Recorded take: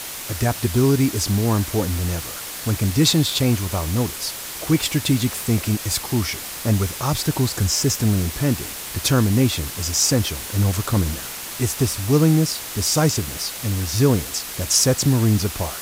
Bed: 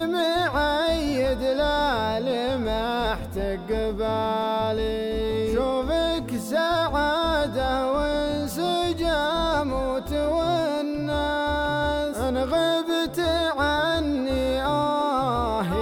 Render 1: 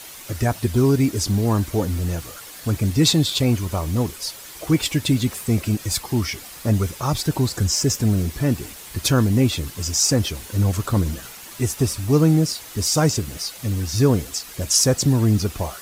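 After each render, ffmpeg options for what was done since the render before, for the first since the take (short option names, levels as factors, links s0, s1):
-af "afftdn=nr=9:nf=-32"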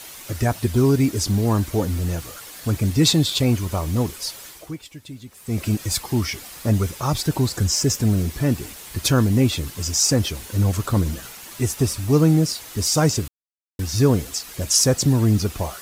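-filter_complex "[0:a]asplit=5[s0][s1][s2][s3][s4];[s0]atrim=end=4.84,asetpts=PTS-STARTPTS,afade=t=out:st=4.46:d=0.38:c=qua:silence=0.11885[s5];[s1]atrim=start=4.84:end=5.26,asetpts=PTS-STARTPTS,volume=0.119[s6];[s2]atrim=start=5.26:end=13.28,asetpts=PTS-STARTPTS,afade=t=in:d=0.38:c=qua:silence=0.11885,afade=t=out:st=8.016:d=0.004:c=hsin[s7];[s3]atrim=start=13.28:end=13.79,asetpts=PTS-STARTPTS,volume=0[s8];[s4]atrim=start=13.79,asetpts=PTS-STARTPTS,afade=t=in:d=0.004:c=hsin[s9];[s5][s6][s7][s8][s9]concat=n=5:v=0:a=1"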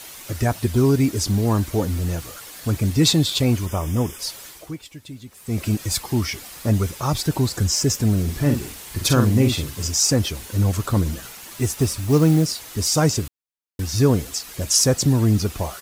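-filter_complex "[0:a]asettb=1/sr,asplit=3[s0][s1][s2];[s0]atrim=end=3.664[s3];[s1]atrim=start=3.66:end=4.19,asetpts=PTS-STARTPTS,afade=t=in:d=0.004:c=qsin,afade=t=out:st=0.526:d=0.004:c=qsin,asuperstop=centerf=4200:order=20:qfactor=3.7[s4];[s2]atrim=start=4.186[s5];[s3][s4]acrossfade=d=0.004:c1=hsin:c2=qsin[s6];[s6][s5]acrossfade=d=0.004:c1=qsin:c2=hsin,asplit=3[s7][s8][s9];[s7]afade=t=out:st=8.27:d=0.02[s10];[s8]asplit=2[s11][s12];[s12]adelay=48,volume=0.501[s13];[s11][s13]amix=inputs=2:normalize=0,afade=t=in:st=8.27:d=0.02,afade=t=out:st=9.86:d=0.02[s14];[s9]afade=t=in:st=9.86:d=0.02[s15];[s10][s14][s15]amix=inputs=3:normalize=0,asettb=1/sr,asplit=3[s16][s17][s18];[s16]atrim=end=11.364[s19];[s17]atrim=start=11.36:end=12.71,asetpts=PTS-STARTPTS,afade=t=in:d=0.004:c=qsin,afade=t=out:st=1.346:d=0.004:c=qsin,acrusher=bits=6:mode=log:mix=0:aa=0.000001[s20];[s18]atrim=start=12.706[s21];[s19][s20]acrossfade=d=0.004:c1=hsin:c2=qsin[s22];[s22][s21]acrossfade=d=0.004:c1=qsin:c2=hsin"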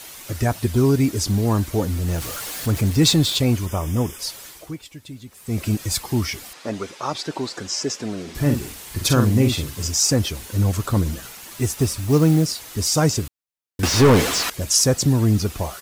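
-filter_complex "[0:a]asettb=1/sr,asplit=3[s0][s1][s2];[s0]atrim=end=2.084[s3];[s1]atrim=start=2.08:end=3.37,asetpts=PTS-STARTPTS,afade=t=in:d=0.004:c=qsin,afade=t=out:st=1.286:d=0.004:c=qsin,aeval=exprs='val(0)+0.5*0.0376*sgn(val(0))':c=same[s4];[s2]atrim=start=3.366[s5];[s3][s4]acrossfade=d=0.004:c1=hsin:c2=qsin[s6];[s6][s5]acrossfade=d=0.004:c1=qsin:c2=hsin,asettb=1/sr,asplit=3[s7][s8][s9];[s7]atrim=end=6.534[s10];[s8]atrim=start=6.53:end=8.35,asetpts=PTS-STARTPTS,afade=t=in:d=0.004:c=qsin,afade=t=out:st=1.816:d=0.004:c=qsin,highpass=320,lowpass=5300[s11];[s9]atrim=start=8.346[s12];[s10][s11]acrossfade=d=0.004:c1=hsin:c2=qsin[s13];[s13][s12]acrossfade=d=0.004:c1=qsin:c2=hsin,asettb=1/sr,asplit=3[s14][s15][s16];[s14]atrim=end=13.834[s17];[s15]atrim=start=13.83:end=14.5,asetpts=PTS-STARTPTS,afade=t=in:d=0.004:c=qsin,afade=t=out:st=0.666:d=0.004:c=qsin,asplit=2[s18][s19];[s19]highpass=f=720:p=1,volume=44.7,asoftclip=type=tanh:threshold=0.531[s20];[s18][s20]amix=inputs=2:normalize=0,lowpass=f=2000:p=1,volume=0.501[s21];[s16]atrim=start=14.496[s22];[s17][s21]acrossfade=d=0.004:c1=hsin:c2=qsin[s23];[s23][s22]acrossfade=d=0.004:c1=qsin:c2=hsin"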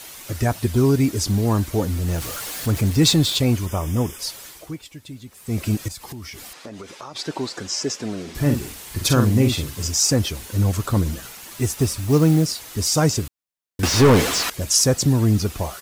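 -filter_complex "[0:a]asettb=1/sr,asplit=3[s0][s1][s2];[s0]atrim=end=5.884[s3];[s1]atrim=start=5.88:end=7.16,asetpts=PTS-STARTPTS,afade=t=in:d=0.004:c=qsin,afade=t=out:st=1.276:d=0.004:c=qsin,acompressor=threshold=0.0251:ratio=8:attack=3.2:release=140:knee=1:detection=peak[s4];[s2]atrim=start=7.156[s5];[s3][s4]acrossfade=d=0.004:c1=hsin:c2=qsin[s6];[s6][s5]acrossfade=d=0.004:c1=qsin:c2=hsin"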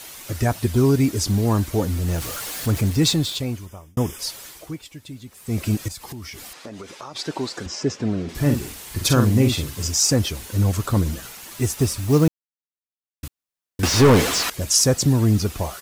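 -filter_complex "[0:a]asettb=1/sr,asplit=3[s0][s1][s2];[s0]atrim=end=7.664[s3];[s1]atrim=start=7.66:end=8.29,asetpts=PTS-STARTPTS,afade=t=in:d=0.004:c=qsin,afade=t=out:st=0.626:d=0.004:c=qsin,aemphasis=mode=reproduction:type=bsi[s4];[s2]atrim=start=8.286[s5];[s3][s4]acrossfade=d=0.004:c1=hsin:c2=qsin[s6];[s6][s5]acrossfade=d=0.004:c1=qsin:c2=hsin,asplit=4[s7][s8][s9][s10];[s7]atrim=end=3.97,asetpts=PTS-STARTPTS,afade=t=out:st=2.74:d=1.23[s11];[s8]atrim=start=3.97:end=12.28,asetpts=PTS-STARTPTS,afade=t=in:d=0.004:c=hsin,afade=t=out:st=8.306:d=0.004:c=hsin[s12];[s9]atrim=start=12.28:end=13.23,asetpts=PTS-STARTPTS,volume=0[s13];[s10]atrim=start=13.23,asetpts=PTS-STARTPTS,afade=t=in:d=0.004:c=hsin[s14];[s11][s12][s13][s14]concat=n=4:v=0:a=1"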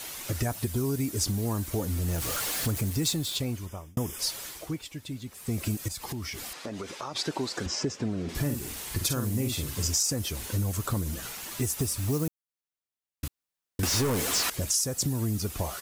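-filter_complex "[0:a]acrossover=split=7400[s0][s1];[s0]acompressor=threshold=0.0447:ratio=5[s2];[s2][s1]amix=inputs=2:normalize=0,alimiter=limit=0.168:level=0:latency=1:release=194"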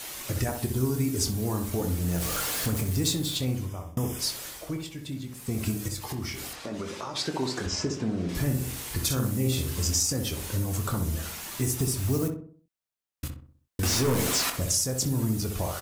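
-filter_complex "[0:a]asplit=2[s0][s1];[s1]adelay=23,volume=0.355[s2];[s0][s2]amix=inputs=2:normalize=0,asplit=2[s3][s4];[s4]adelay=63,lowpass=f=1300:p=1,volume=0.596,asplit=2[s5][s6];[s6]adelay=63,lowpass=f=1300:p=1,volume=0.47,asplit=2[s7][s8];[s8]adelay=63,lowpass=f=1300:p=1,volume=0.47,asplit=2[s9][s10];[s10]adelay=63,lowpass=f=1300:p=1,volume=0.47,asplit=2[s11][s12];[s12]adelay=63,lowpass=f=1300:p=1,volume=0.47,asplit=2[s13][s14];[s14]adelay=63,lowpass=f=1300:p=1,volume=0.47[s15];[s3][s5][s7][s9][s11][s13][s15]amix=inputs=7:normalize=0"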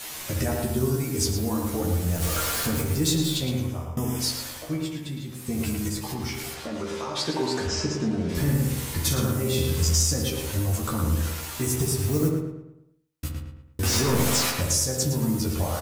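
-filter_complex "[0:a]asplit=2[s0][s1];[s1]adelay=13,volume=0.708[s2];[s0][s2]amix=inputs=2:normalize=0,asplit=2[s3][s4];[s4]adelay=111,lowpass=f=3100:p=1,volume=0.668,asplit=2[s5][s6];[s6]adelay=111,lowpass=f=3100:p=1,volume=0.44,asplit=2[s7][s8];[s8]adelay=111,lowpass=f=3100:p=1,volume=0.44,asplit=2[s9][s10];[s10]adelay=111,lowpass=f=3100:p=1,volume=0.44,asplit=2[s11][s12];[s12]adelay=111,lowpass=f=3100:p=1,volume=0.44,asplit=2[s13][s14];[s14]adelay=111,lowpass=f=3100:p=1,volume=0.44[s15];[s3][s5][s7][s9][s11][s13][s15]amix=inputs=7:normalize=0"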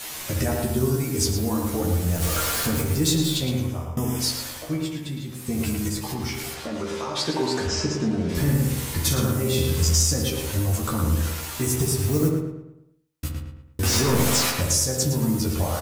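-af "volume=1.26"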